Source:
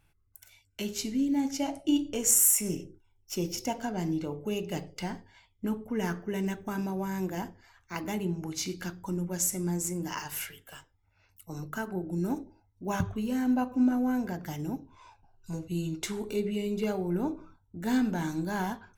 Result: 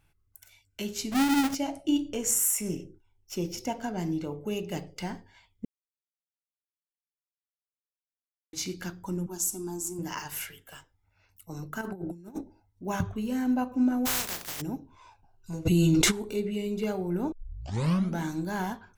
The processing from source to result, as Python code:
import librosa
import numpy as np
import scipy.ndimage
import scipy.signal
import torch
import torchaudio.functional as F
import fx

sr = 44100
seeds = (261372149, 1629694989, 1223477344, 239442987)

y = fx.halfwave_hold(x, sr, at=(1.11, 1.54), fade=0.02)
y = fx.high_shelf(y, sr, hz=4600.0, db=-4.5, at=(2.15, 3.84))
y = fx.fixed_phaser(y, sr, hz=540.0, stages=6, at=(9.26, 9.99))
y = fx.over_compress(y, sr, threshold_db=-37.0, ratio=-0.5, at=(11.81, 12.41))
y = fx.spec_flatten(y, sr, power=0.16, at=(14.05, 14.6), fade=0.02)
y = fx.env_flatten(y, sr, amount_pct=100, at=(15.65, 16.1), fade=0.02)
y = fx.edit(y, sr, fx.silence(start_s=5.65, length_s=2.88),
    fx.tape_start(start_s=17.32, length_s=0.88), tone=tone)